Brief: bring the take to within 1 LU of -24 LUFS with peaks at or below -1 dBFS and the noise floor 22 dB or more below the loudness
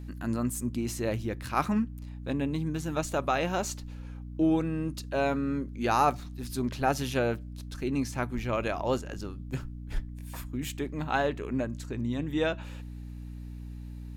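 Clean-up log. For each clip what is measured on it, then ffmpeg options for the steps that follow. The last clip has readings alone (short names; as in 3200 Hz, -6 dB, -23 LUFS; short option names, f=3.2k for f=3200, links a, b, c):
hum 60 Hz; harmonics up to 300 Hz; hum level -38 dBFS; loudness -31.0 LUFS; peak -12.0 dBFS; loudness target -24.0 LUFS
-> -af "bandreject=f=60:t=h:w=6,bandreject=f=120:t=h:w=6,bandreject=f=180:t=h:w=6,bandreject=f=240:t=h:w=6,bandreject=f=300:t=h:w=6"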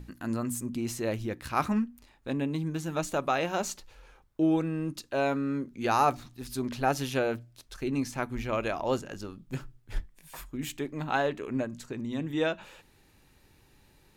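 hum none; loudness -31.5 LUFS; peak -11.5 dBFS; loudness target -24.0 LUFS
-> -af "volume=7.5dB"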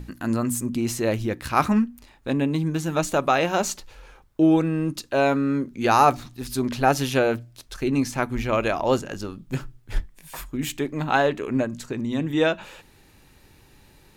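loudness -24.0 LUFS; peak -4.0 dBFS; noise floor -55 dBFS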